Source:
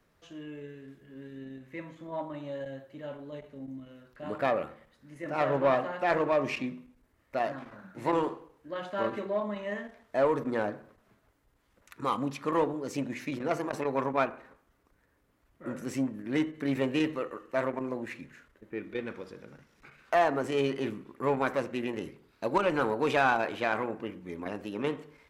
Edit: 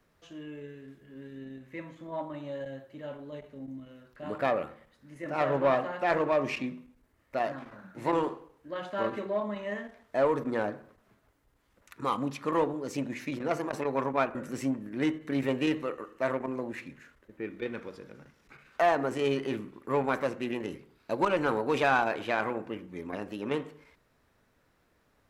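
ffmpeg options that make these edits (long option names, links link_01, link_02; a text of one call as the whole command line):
ffmpeg -i in.wav -filter_complex "[0:a]asplit=2[link_01][link_02];[link_01]atrim=end=14.352[link_03];[link_02]atrim=start=15.678[link_04];[link_03][link_04]acrossfade=duration=0.004:curve1=hsin:curve2=hsin" out.wav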